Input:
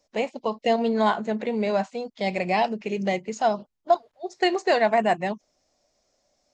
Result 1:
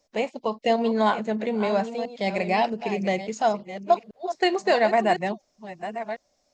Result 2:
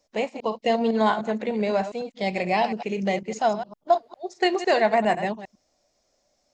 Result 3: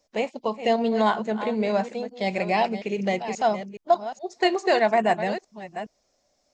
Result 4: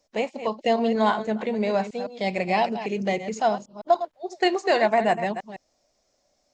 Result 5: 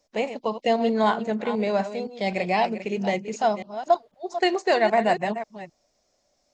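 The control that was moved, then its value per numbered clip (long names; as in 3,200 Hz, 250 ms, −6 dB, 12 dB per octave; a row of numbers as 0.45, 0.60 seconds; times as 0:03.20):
delay that plays each chunk backwards, delay time: 685, 101, 419, 159, 259 milliseconds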